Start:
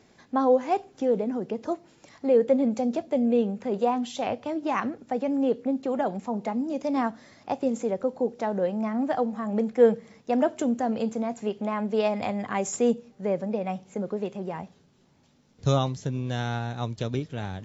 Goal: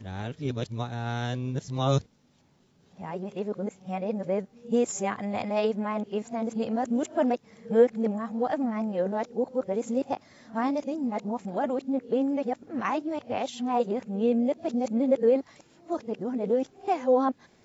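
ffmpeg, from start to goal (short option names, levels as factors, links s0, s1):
-af "areverse,volume=0.841"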